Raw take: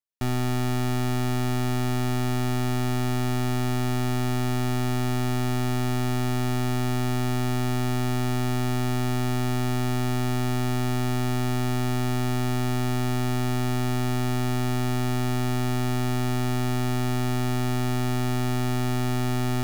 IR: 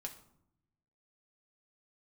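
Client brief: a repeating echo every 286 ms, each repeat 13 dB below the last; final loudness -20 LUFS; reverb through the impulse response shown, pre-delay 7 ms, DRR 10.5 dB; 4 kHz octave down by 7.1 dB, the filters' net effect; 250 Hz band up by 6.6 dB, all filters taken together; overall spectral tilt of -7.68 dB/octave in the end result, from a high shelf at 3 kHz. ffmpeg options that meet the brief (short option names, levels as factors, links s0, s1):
-filter_complex "[0:a]equalizer=f=250:t=o:g=7,highshelf=f=3000:g=-4,equalizer=f=4000:t=o:g=-6.5,aecho=1:1:286|572|858:0.224|0.0493|0.0108,asplit=2[s0][s1];[1:a]atrim=start_sample=2205,adelay=7[s2];[s1][s2]afir=irnorm=-1:irlink=0,volume=0.422[s3];[s0][s3]amix=inputs=2:normalize=0,volume=1.41"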